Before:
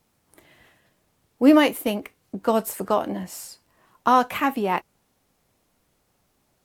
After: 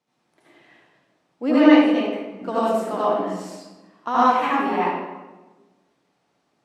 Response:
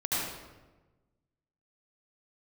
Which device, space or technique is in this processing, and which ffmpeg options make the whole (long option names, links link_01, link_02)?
supermarket ceiling speaker: -filter_complex "[0:a]asettb=1/sr,asplit=3[link_01][link_02][link_03];[link_01]atrim=end=1.514[link_04];[link_02]atrim=start=1.51:end=2.03,asetpts=PTS-STARTPTS,afade=type=in:duration=0.004:curve=qsin,afade=type=out:start_time=0.516:duration=0.004:curve=qsin,lowpass=5900[link_05];[link_03]atrim=start=2.026[link_06];[link_04][link_05]acrossfade=duration=0.004:curve1=hsin:curve2=qsin[link_07];[link_07][link_06]acrossfade=duration=0.004:curve1=qsin:curve2=hsin,highpass=210,lowpass=5500[link_08];[1:a]atrim=start_sample=2205[link_09];[link_08][link_09]afir=irnorm=-1:irlink=0,volume=-7dB"